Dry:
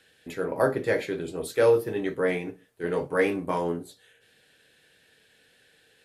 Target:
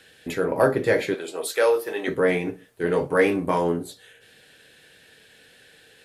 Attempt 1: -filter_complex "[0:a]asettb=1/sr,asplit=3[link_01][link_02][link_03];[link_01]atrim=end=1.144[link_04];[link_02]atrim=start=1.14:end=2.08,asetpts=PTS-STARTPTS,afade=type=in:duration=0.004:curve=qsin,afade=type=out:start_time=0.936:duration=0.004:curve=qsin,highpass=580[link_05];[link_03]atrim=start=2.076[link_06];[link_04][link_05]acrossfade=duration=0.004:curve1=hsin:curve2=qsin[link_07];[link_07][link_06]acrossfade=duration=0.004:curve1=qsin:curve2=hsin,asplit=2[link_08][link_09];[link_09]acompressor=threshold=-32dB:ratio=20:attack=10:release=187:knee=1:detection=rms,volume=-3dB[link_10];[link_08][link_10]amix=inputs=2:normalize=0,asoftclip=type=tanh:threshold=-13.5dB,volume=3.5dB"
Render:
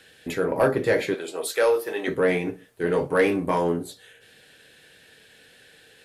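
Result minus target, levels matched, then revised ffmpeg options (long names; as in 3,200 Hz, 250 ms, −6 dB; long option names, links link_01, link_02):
soft clipping: distortion +13 dB
-filter_complex "[0:a]asettb=1/sr,asplit=3[link_01][link_02][link_03];[link_01]atrim=end=1.144[link_04];[link_02]atrim=start=1.14:end=2.08,asetpts=PTS-STARTPTS,afade=type=in:duration=0.004:curve=qsin,afade=type=out:start_time=0.936:duration=0.004:curve=qsin,highpass=580[link_05];[link_03]atrim=start=2.076[link_06];[link_04][link_05]acrossfade=duration=0.004:curve1=hsin:curve2=qsin[link_07];[link_07][link_06]acrossfade=duration=0.004:curve1=qsin:curve2=hsin,asplit=2[link_08][link_09];[link_09]acompressor=threshold=-32dB:ratio=20:attack=10:release=187:knee=1:detection=rms,volume=-3dB[link_10];[link_08][link_10]amix=inputs=2:normalize=0,asoftclip=type=tanh:threshold=-5.5dB,volume=3.5dB"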